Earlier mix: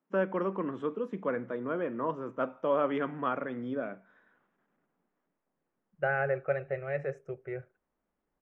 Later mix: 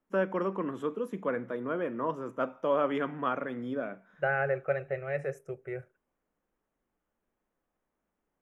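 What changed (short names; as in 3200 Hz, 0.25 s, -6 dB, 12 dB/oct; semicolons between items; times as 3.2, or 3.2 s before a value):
second voice: entry -1.80 s; master: remove air absorption 140 m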